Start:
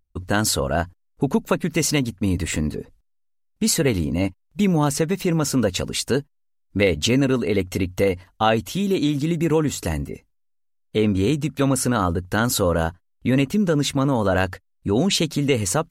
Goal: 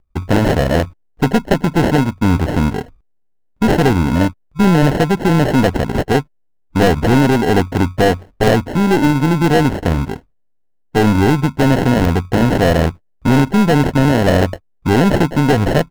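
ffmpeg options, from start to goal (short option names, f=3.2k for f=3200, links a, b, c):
-af "acrusher=samples=37:mix=1:aa=0.000001,highshelf=f=3.1k:g=-11,aeval=exprs='0.501*(cos(1*acos(clip(val(0)/0.501,-1,1)))-cos(1*PI/2))+0.0891*(cos(4*acos(clip(val(0)/0.501,-1,1)))-cos(4*PI/2))+0.0794*(cos(5*acos(clip(val(0)/0.501,-1,1)))-cos(5*PI/2))':c=same,volume=4dB"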